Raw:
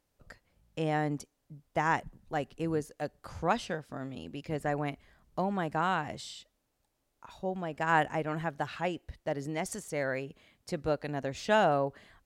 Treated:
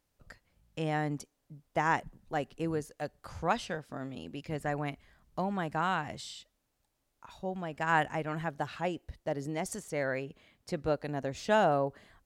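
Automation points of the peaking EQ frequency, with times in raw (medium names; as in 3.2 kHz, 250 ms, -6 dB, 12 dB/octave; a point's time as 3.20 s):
peaking EQ -3 dB 1.8 oct
480 Hz
from 1.19 s 63 Hz
from 2.71 s 310 Hz
from 3.76 s 61 Hz
from 4.39 s 440 Hz
from 8.48 s 2.1 kHz
from 9.77 s 11 kHz
from 10.94 s 2.6 kHz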